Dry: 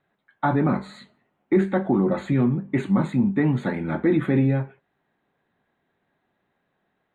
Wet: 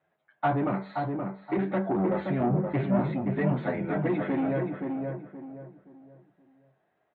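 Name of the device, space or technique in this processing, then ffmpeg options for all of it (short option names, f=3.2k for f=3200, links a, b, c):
barber-pole flanger into a guitar amplifier: -filter_complex "[0:a]asettb=1/sr,asplit=3[a][b][c];[a]atrim=end=2.404[d];[b]atrim=start=2.4:end=2.99,asetpts=PTS-STARTPTS,afade=t=in:d=0.004:c=qsin,afade=t=out:st=0.586:d=0.004:c=qsin,bass=f=250:g=7,treble=f=4k:g=-2[e];[c]atrim=start=2.986[f];[d][e]acrossfade=d=0.004:c1=hsin:c2=qsin[g];[g][f]acrossfade=d=0.004:c1=qsin:c2=hsin,asplit=2[h][i];[i]adelay=8.8,afreqshift=-0.89[j];[h][j]amix=inputs=2:normalize=1,asoftclip=type=tanh:threshold=-20.5dB,highpass=75,equalizer=f=110:t=q:w=4:g=-5,equalizer=f=240:t=q:w=4:g=-6,equalizer=f=660:t=q:w=4:g=8,lowpass=f=3.4k:w=0.5412,lowpass=f=3.4k:w=1.3066,asplit=2[k][l];[l]adelay=524,lowpass=f=1.4k:p=1,volume=-4dB,asplit=2[m][n];[n]adelay=524,lowpass=f=1.4k:p=1,volume=0.33,asplit=2[o][p];[p]adelay=524,lowpass=f=1.4k:p=1,volume=0.33,asplit=2[q][r];[r]adelay=524,lowpass=f=1.4k:p=1,volume=0.33[s];[k][m][o][q][s]amix=inputs=5:normalize=0"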